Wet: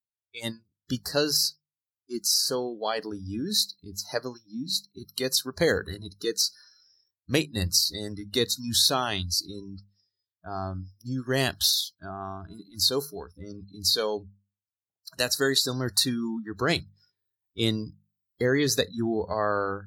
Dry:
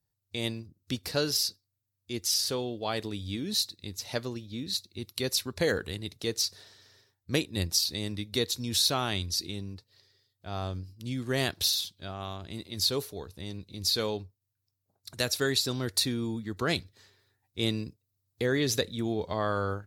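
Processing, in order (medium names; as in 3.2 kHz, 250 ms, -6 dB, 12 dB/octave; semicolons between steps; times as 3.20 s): spectral noise reduction 28 dB; hum notches 50/100/150/200 Hz; trim +4 dB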